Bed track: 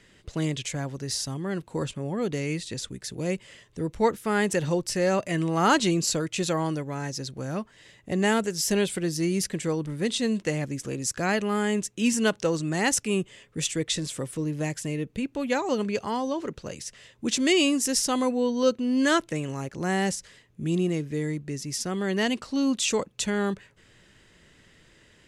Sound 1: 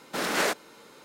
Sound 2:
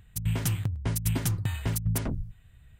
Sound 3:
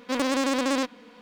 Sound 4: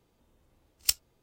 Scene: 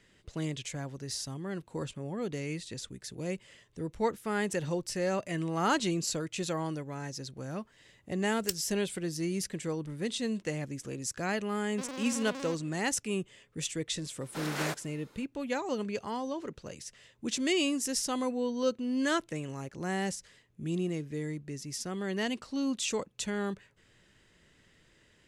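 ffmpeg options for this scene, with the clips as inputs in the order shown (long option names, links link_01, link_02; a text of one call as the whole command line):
ffmpeg -i bed.wav -i cue0.wav -i cue1.wav -i cue2.wav -i cue3.wav -filter_complex "[0:a]volume=-7dB[link_01];[3:a]alimiter=limit=-23dB:level=0:latency=1:release=227[link_02];[4:a]atrim=end=1.22,asetpts=PTS-STARTPTS,volume=-8.5dB,afade=type=in:duration=0.004:curve=hsin,afade=type=out:start_time=1.216:duration=0.004:curve=hsin,adelay=7600[link_03];[link_02]atrim=end=1.21,asetpts=PTS-STARTPTS,volume=-9.5dB,afade=type=in:duration=0.004:curve=hsin,afade=type=out:start_time=1.206:duration=0.004:curve=hsin,adelay=11690[link_04];[1:a]atrim=end=1.04,asetpts=PTS-STARTPTS,volume=-9dB,afade=type=in:duration=0.004:curve=hsin,afade=type=out:start_time=1.036:duration=0.004:curve=hsin,adelay=14210[link_05];[link_01][link_03][link_04][link_05]amix=inputs=4:normalize=0" out.wav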